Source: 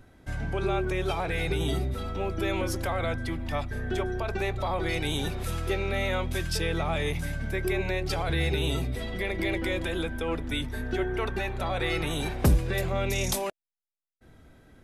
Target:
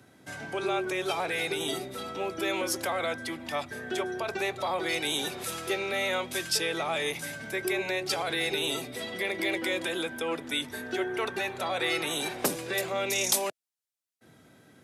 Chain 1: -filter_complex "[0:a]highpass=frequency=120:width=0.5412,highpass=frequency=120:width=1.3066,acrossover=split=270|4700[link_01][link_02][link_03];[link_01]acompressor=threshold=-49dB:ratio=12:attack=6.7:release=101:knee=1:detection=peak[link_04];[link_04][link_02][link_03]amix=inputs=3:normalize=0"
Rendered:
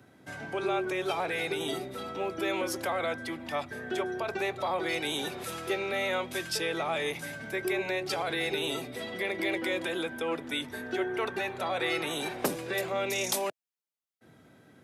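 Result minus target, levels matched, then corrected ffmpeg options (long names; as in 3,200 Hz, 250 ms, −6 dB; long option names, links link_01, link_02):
8,000 Hz band −4.5 dB
-filter_complex "[0:a]highpass=frequency=120:width=0.5412,highpass=frequency=120:width=1.3066,equalizer=frequency=8400:width=0.39:gain=6.5,acrossover=split=270|4700[link_01][link_02][link_03];[link_01]acompressor=threshold=-49dB:ratio=12:attack=6.7:release=101:knee=1:detection=peak[link_04];[link_04][link_02][link_03]amix=inputs=3:normalize=0"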